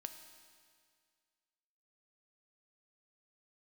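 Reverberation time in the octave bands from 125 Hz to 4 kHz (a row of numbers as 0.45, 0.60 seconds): 2.0, 2.0, 2.0, 2.0, 2.0, 2.0 seconds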